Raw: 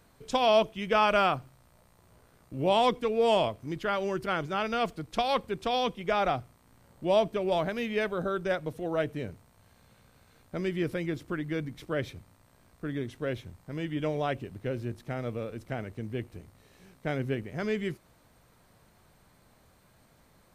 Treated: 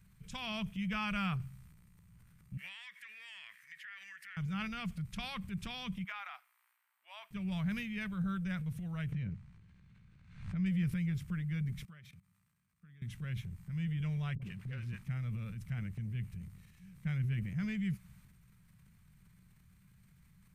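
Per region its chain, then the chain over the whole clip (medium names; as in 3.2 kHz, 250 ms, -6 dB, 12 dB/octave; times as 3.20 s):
2.57–4.37 s: resonant high-pass 1.8 kHz, resonance Q 11 + compression 4:1, threshold -39 dBFS
6.04–7.31 s: inverse Chebyshev high-pass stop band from 180 Hz, stop band 70 dB + peaking EQ 6.5 kHz -11.5 dB 1.7 oct
9.12–10.66 s: distance through air 140 m + swell ahead of each attack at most 86 dB/s
11.85–13.02 s: peaking EQ 1.2 kHz +4.5 dB 0.26 oct + level held to a coarse grid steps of 24 dB + high-pass 260 Hz 6 dB/octave
14.35–15.03 s: overdrive pedal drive 12 dB, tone 3.6 kHz, clips at -21 dBFS + phase dispersion highs, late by 67 ms, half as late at 360 Hz
whole clip: FFT filter 100 Hz 0 dB, 190 Hz +4 dB, 290 Hz -27 dB, 610 Hz -28 dB, 1.1 kHz -15 dB, 2.3 kHz -6 dB, 4.1 kHz -13 dB, 9.7 kHz -7 dB; transient shaper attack -1 dB, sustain +7 dB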